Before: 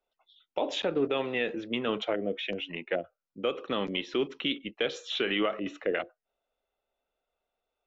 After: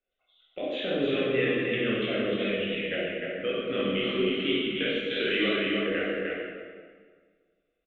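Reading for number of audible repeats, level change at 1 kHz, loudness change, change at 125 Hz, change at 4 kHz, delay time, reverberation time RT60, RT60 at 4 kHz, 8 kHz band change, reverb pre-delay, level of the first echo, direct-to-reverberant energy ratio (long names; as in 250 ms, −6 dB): 1, −3.0 dB, +3.5 dB, +7.0 dB, +3.0 dB, 305 ms, 1.7 s, 1.3 s, can't be measured, 14 ms, −3.5 dB, −8.0 dB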